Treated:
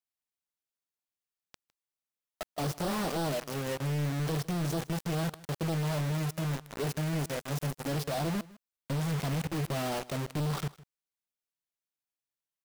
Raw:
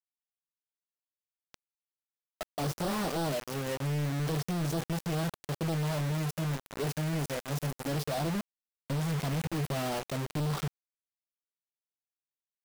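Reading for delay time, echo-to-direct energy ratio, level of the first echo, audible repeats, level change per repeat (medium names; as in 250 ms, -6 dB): 157 ms, -21.0 dB, -21.0 dB, 1, no regular repeats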